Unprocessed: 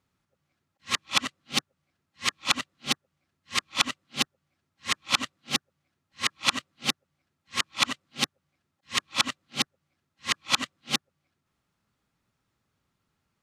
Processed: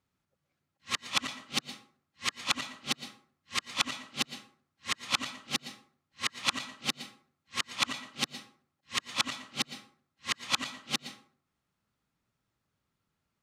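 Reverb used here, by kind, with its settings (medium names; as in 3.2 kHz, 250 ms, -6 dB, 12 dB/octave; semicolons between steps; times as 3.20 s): plate-style reverb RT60 0.51 s, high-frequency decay 0.6×, pre-delay 105 ms, DRR 11 dB; trim -5 dB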